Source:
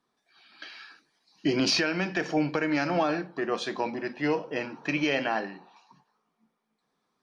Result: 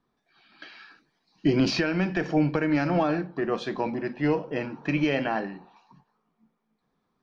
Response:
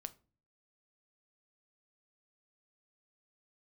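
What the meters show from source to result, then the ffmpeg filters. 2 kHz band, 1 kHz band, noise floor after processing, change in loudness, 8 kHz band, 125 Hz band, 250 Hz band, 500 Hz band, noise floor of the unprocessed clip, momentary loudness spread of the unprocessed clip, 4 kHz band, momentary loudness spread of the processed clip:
−1.5 dB, 0.0 dB, −77 dBFS, +1.5 dB, can't be measured, +7.5 dB, +4.0 dB, +1.5 dB, −79 dBFS, 17 LU, −4.5 dB, 8 LU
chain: -af "aemphasis=mode=reproduction:type=bsi"

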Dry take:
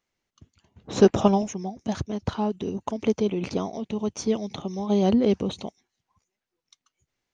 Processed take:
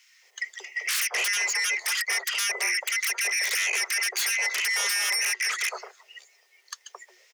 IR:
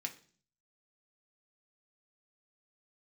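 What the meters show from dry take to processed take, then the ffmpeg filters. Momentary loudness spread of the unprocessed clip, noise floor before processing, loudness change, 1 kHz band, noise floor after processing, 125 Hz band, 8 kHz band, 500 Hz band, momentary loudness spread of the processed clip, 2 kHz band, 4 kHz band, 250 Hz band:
12 LU, below −85 dBFS, +0.5 dB, −6.0 dB, −63 dBFS, below −40 dB, can't be measured, −19.5 dB, 12 LU, +20.5 dB, +12.5 dB, below −35 dB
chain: -filter_complex "[0:a]afftfilt=real='real(if(lt(b,272),68*(eq(floor(b/68),0)*2+eq(floor(b/68),1)*0+eq(floor(b/68),2)*3+eq(floor(b/68),3)*1)+mod(b,68),b),0)':imag='imag(if(lt(b,272),68*(eq(floor(b/68),0)*2+eq(floor(b/68),1)*0+eq(floor(b/68),2)*3+eq(floor(b/68),3)*1)+mod(b,68),b),0)':win_size=2048:overlap=0.75,acompressor=threshold=-35dB:ratio=8,aeval=exprs='0.075*sin(PI/2*8.91*val(0)/0.075)':channel_layout=same,acrossover=split=810[link_01][link_02];[link_01]adelay=220[link_03];[link_03][link_02]amix=inputs=2:normalize=0,afreqshift=360"

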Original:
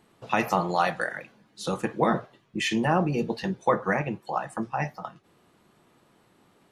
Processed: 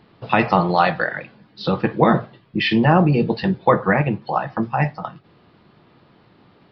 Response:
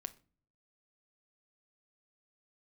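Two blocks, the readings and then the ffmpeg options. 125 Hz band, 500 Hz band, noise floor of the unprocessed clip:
+11.5 dB, +7.5 dB, −63 dBFS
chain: -filter_complex "[0:a]equalizer=frequency=100:width_type=o:width=1.8:gain=6,asplit=2[link_01][link_02];[1:a]atrim=start_sample=2205[link_03];[link_02][link_03]afir=irnorm=-1:irlink=0,volume=-7dB[link_04];[link_01][link_04]amix=inputs=2:normalize=0,aresample=11025,aresample=44100,volume=5dB"

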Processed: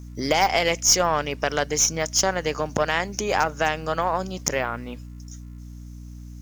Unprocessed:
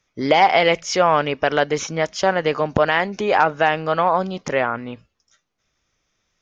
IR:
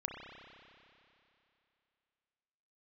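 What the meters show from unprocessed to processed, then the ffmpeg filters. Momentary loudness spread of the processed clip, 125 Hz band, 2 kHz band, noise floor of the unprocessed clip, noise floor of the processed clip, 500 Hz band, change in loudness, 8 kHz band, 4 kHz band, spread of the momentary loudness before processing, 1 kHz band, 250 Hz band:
22 LU, −2.5 dB, −4.5 dB, −74 dBFS, −39 dBFS, −6.0 dB, −3.5 dB, can't be measured, +0.5 dB, 7 LU, −6.0 dB, −5.0 dB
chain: -filter_complex "[0:a]aemphasis=mode=production:type=cd,asplit=2[link_01][link_02];[link_02]acompressor=threshold=-28dB:ratio=6,volume=2.5dB[link_03];[link_01][link_03]amix=inputs=2:normalize=0,aexciter=amount=3.3:drive=8.9:freq=5500,aeval=exprs='val(0)+0.0398*(sin(2*PI*60*n/s)+sin(2*PI*2*60*n/s)/2+sin(2*PI*3*60*n/s)/3+sin(2*PI*4*60*n/s)/4+sin(2*PI*5*60*n/s)/5)':channel_layout=same,aeval=exprs='1.58*(cos(1*acos(clip(val(0)/1.58,-1,1)))-cos(1*PI/2))+0.2*(cos(2*acos(clip(val(0)/1.58,-1,1)))-cos(2*PI/2))+0.01*(cos(3*acos(clip(val(0)/1.58,-1,1)))-cos(3*PI/2))+0.0501*(cos(7*acos(clip(val(0)/1.58,-1,1)))-cos(7*PI/2))':channel_layout=same,acrusher=bits=7:mix=0:aa=0.5,volume=-7dB"

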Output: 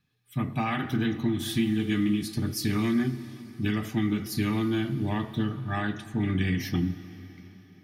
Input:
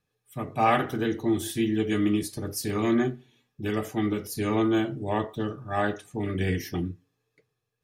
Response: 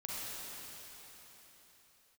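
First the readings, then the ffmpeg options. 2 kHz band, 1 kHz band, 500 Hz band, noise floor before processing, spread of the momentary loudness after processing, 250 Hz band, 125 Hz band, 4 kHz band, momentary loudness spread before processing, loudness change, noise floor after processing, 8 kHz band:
−1.0 dB, −7.0 dB, −7.5 dB, −80 dBFS, 7 LU, +0.5 dB, +3.5 dB, +2.0 dB, 10 LU, −1.0 dB, −54 dBFS, −2.5 dB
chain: -filter_complex "[0:a]acompressor=threshold=-27dB:ratio=6,equalizer=frequency=125:width_type=o:width=1:gain=6,equalizer=frequency=250:width_type=o:width=1:gain=8,equalizer=frequency=500:width_type=o:width=1:gain=-11,equalizer=frequency=2000:width_type=o:width=1:gain=4,equalizer=frequency=4000:width_type=o:width=1:gain=6,equalizer=frequency=8000:width_type=o:width=1:gain=-5,asplit=2[link_01][link_02];[1:a]atrim=start_sample=2205[link_03];[link_02][link_03]afir=irnorm=-1:irlink=0,volume=-14dB[link_04];[link_01][link_04]amix=inputs=2:normalize=0"

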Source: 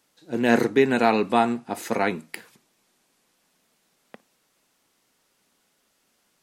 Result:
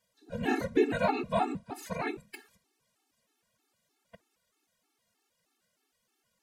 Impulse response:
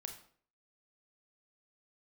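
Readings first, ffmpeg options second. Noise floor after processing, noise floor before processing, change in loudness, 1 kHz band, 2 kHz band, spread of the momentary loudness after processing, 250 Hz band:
−79 dBFS, −69 dBFS, −8.5 dB, −8.5 dB, −10.0 dB, 16 LU, −9.5 dB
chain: -af "afftfilt=real='hypot(re,im)*cos(2*PI*random(0))':imag='hypot(re,im)*sin(2*PI*random(1))':win_size=512:overlap=0.75,afftfilt=real='re*gt(sin(2*PI*3.2*pts/sr)*(1-2*mod(floor(b*sr/1024/230),2)),0)':imag='im*gt(sin(2*PI*3.2*pts/sr)*(1-2*mod(floor(b*sr/1024/230),2)),0)':win_size=1024:overlap=0.75"

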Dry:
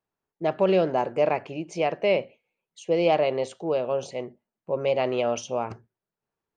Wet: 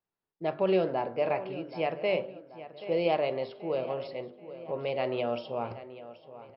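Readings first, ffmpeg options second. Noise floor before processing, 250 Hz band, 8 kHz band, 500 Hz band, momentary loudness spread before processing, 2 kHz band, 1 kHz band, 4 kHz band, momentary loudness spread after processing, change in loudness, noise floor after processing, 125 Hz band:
below −85 dBFS, −5.0 dB, below −35 dB, −5.5 dB, 12 LU, −5.0 dB, −5.5 dB, −5.0 dB, 17 LU, −5.5 dB, below −85 dBFS, −5.0 dB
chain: -filter_complex "[0:a]bandreject=frequency=49.88:width_type=h:width=4,bandreject=frequency=99.76:width_type=h:width=4,bandreject=frequency=149.64:width_type=h:width=4,bandreject=frequency=199.52:width_type=h:width=4,bandreject=frequency=249.4:width_type=h:width=4,bandreject=frequency=299.28:width_type=h:width=4,bandreject=frequency=349.16:width_type=h:width=4,bandreject=frequency=399.04:width_type=h:width=4,bandreject=frequency=448.92:width_type=h:width=4,bandreject=frequency=498.8:width_type=h:width=4,bandreject=frequency=548.68:width_type=h:width=4,bandreject=frequency=598.56:width_type=h:width=4,bandreject=frequency=648.44:width_type=h:width=4,bandreject=frequency=698.32:width_type=h:width=4,bandreject=frequency=748.2:width_type=h:width=4,bandreject=frequency=798.08:width_type=h:width=4,bandreject=frequency=847.96:width_type=h:width=4,bandreject=frequency=897.84:width_type=h:width=4,bandreject=frequency=947.72:width_type=h:width=4,bandreject=frequency=997.6:width_type=h:width=4,bandreject=frequency=1047.48:width_type=h:width=4,bandreject=frequency=1097.36:width_type=h:width=4,bandreject=frequency=1147.24:width_type=h:width=4,bandreject=frequency=1197.12:width_type=h:width=4,bandreject=frequency=1247:width_type=h:width=4,bandreject=frequency=1296.88:width_type=h:width=4,bandreject=frequency=1346.76:width_type=h:width=4,bandreject=frequency=1396.64:width_type=h:width=4,bandreject=frequency=1446.52:width_type=h:width=4,bandreject=frequency=1496.4:width_type=h:width=4,bandreject=frequency=1546.28:width_type=h:width=4,bandreject=frequency=1596.16:width_type=h:width=4,asplit=2[link_01][link_02];[link_02]adelay=780,lowpass=frequency=4100:poles=1,volume=-14.5dB,asplit=2[link_03][link_04];[link_04]adelay=780,lowpass=frequency=4100:poles=1,volume=0.46,asplit=2[link_05][link_06];[link_06]adelay=780,lowpass=frequency=4100:poles=1,volume=0.46,asplit=2[link_07][link_08];[link_08]adelay=780,lowpass=frequency=4100:poles=1,volume=0.46[link_09];[link_03][link_05][link_07][link_09]amix=inputs=4:normalize=0[link_10];[link_01][link_10]amix=inputs=2:normalize=0,flanger=delay=5.7:depth=2.9:regen=87:speed=0.45:shape=sinusoidal" -ar 12000 -c:a libmp3lame -b:a 64k

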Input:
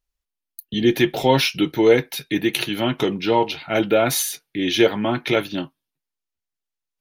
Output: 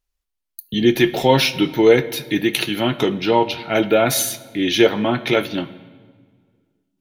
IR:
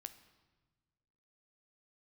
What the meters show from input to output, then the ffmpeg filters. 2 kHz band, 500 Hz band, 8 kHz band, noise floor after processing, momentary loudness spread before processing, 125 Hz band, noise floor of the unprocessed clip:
+2.0 dB, +2.5 dB, +2.0 dB, −79 dBFS, 8 LU, +2.0 dB, −85 dBFS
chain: -filter_complex "[0:a]asplit=2[link_01][link_02];[1:a]atrim=start_sample=2205,asetrate=34839,aresample=44100[link_03];[link_02][link_03]afir=irnorm=-1:irlink=0,volume=9dB[link_04];[link_01][link_04]amix=inputs=2:normalize=0,volume=-6.5dB"

